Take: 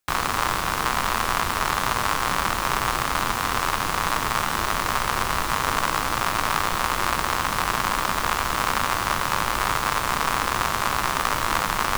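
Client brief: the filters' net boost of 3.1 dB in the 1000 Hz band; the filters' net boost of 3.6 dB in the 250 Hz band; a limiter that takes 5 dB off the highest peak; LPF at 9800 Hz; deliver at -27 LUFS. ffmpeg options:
-af "lowpass=9.8k,equalizer=f=250:t=o:g=4.5,equalizer=f=1k:t=o:g=3.5,volume=-4dB,alimiter=limit=-13dB:level=0:latency=1"

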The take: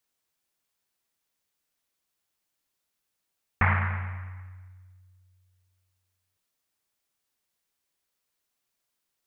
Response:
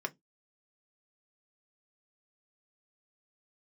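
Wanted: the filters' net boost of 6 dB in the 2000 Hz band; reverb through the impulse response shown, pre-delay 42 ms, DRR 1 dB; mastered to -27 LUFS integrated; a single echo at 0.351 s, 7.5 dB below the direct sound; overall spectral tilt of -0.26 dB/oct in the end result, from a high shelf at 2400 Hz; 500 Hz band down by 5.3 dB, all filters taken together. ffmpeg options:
-filter_complex "[0:a]equalizer=f=500:t=o:g=-8,equalizer=f=2k:t=o:g=9,highshelf=f=2.4k:g=-3.5,aecho=1:1:351:0.422,asplit=2[a][b];[1:a]atrim=start_sample=2205,adelay=42[c];[b][c]afir=irnorm=-1:irlink=0,volume=-4dB[d];[a][d]amix=inputs=2:normalize=0,volume=-5dB"

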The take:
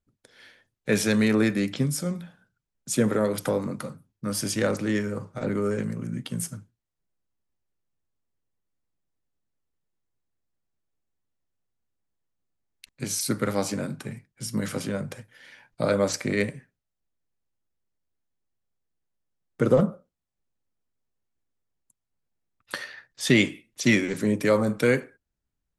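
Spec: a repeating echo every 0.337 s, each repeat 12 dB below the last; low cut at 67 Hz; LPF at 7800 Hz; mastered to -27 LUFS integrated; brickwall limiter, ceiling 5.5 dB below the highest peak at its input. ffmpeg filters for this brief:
-af "highpass=67,lowpass=7.8k,alimiter=limit=-12.5dB:level=0:latency=1,aecho=1:1:337|674|1011:0.251|0.0628|0.0157,volume=0.5dB"

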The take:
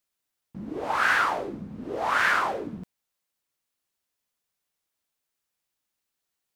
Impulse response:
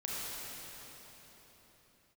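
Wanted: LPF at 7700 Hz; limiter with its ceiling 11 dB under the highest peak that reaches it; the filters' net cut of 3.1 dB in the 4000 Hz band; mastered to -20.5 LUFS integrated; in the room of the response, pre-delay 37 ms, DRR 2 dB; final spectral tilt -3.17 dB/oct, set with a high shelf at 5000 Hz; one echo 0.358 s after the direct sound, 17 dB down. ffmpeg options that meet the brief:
-filter_complex "[0:a]lowpass=7.7k,equalizer=f=4k:t=o:g=-6,highshelf=f=5k:g=4.5,alimiter=limit=-21dB:level=0:latency=1,aecho=1:1:358:0.141,asplit=2[a][b];[1:a]atrim=start_sample=2205,adelay=37[c];[b][c]afir=irnorm=-1:irlink=0,volume=-6dB[d];[a][d]amix=inputs=2:normalize=0,volume=9.5dB"

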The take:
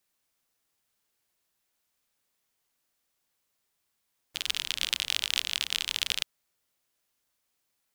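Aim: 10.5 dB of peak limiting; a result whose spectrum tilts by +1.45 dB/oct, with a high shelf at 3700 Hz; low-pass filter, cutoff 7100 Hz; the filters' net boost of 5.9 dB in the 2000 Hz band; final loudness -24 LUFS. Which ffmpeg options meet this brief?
-af "lowpass=7.1k,equalizer=f=2k:t=o:g=9,highshelf=f=3.7k:g=-3,volume=10dB,alimiter=limit=-4.5dB:level=0:latency=1"

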